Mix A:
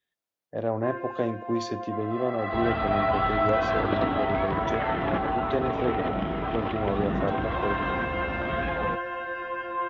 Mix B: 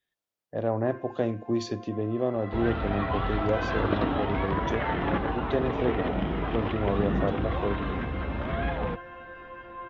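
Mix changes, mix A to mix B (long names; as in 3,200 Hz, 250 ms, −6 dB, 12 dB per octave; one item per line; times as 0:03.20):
first sound −11.0 dB
master: add low-shelf EQ 76 Hz +7.5 dB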